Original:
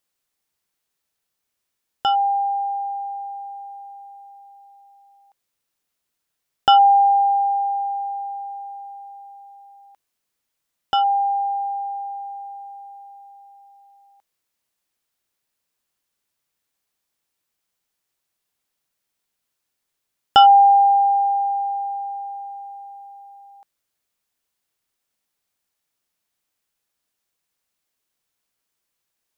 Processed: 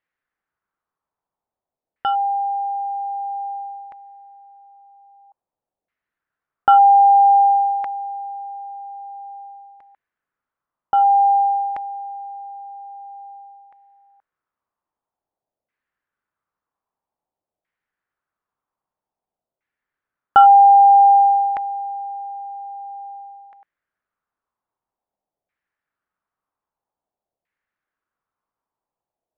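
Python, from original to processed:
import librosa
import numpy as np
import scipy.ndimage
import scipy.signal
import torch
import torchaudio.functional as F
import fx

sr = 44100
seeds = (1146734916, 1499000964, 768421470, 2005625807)

y = fx.filter_lfo_lowpass(x, sr, shape='saw_down', hz=0.51, low_hz=640.0, high_hz=2000.0, q=2.9)
y = y * 10.0 ** (-3.0 / 20.0)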